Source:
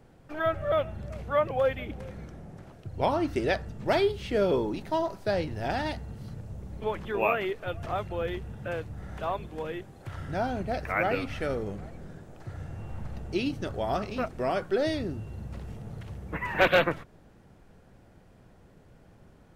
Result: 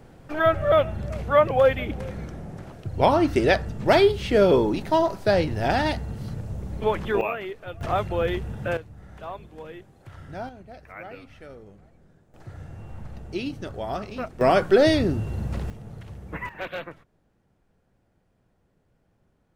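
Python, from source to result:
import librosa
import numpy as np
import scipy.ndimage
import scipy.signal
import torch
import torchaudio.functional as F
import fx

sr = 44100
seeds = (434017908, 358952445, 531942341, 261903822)

y = fx.gain(x, sr, db=fx.steps((0.0, 7.5), (7.21, -3.0), (7.81, 7.0), (8.77, -5.0), (10.49, -13.0), (12.34, -1.0), (14.41, 10.0), (15.7, 0.0), (16.49, -12.0)))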